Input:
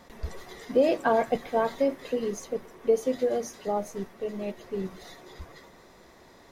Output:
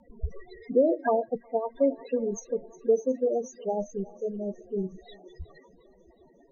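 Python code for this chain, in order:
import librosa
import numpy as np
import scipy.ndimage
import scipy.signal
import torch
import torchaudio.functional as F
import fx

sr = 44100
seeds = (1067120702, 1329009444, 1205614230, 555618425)

p1 = fx.high_shelf(x, sr, hz=3600.0, db=3.5)
p2 = fx.spec_topn(p1, sr, count=8)
p3 = fx.rotary(p2, sr, hz=7.0)
p4 = p3 + fx.echo_thinned(p3, sr, ms=362, feedback_pct=70, hz=450.0, wet_db=-19.5, dry=0)
p5 = fx.upward_expand(p4, sr, threshold_db=-41.0, expansion=1.5, at=(1.19, 1.74), fade=0.02)
y = F.gain(torch.from_numpy(p5), 3.0).numpy()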